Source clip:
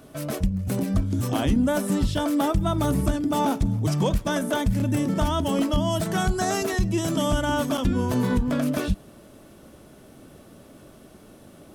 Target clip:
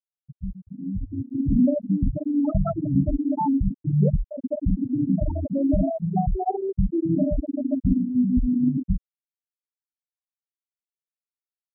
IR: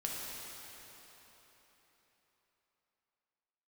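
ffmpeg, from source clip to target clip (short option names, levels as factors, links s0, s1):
-filter_complex "[1:a]atrim=start_sample=2205,atrim=end_sample=3528[s0];[0:a][s0]afir=irnorm=-1:irlink=0,afftfilt=real='re*gte(hypot(re,im),0.398)':imag='im*gte(hypot(re,im),0.398)':win_size=1024:overlap=0.75,dynaudnorm=f=860:g=3:m=3.98,volume=0.473"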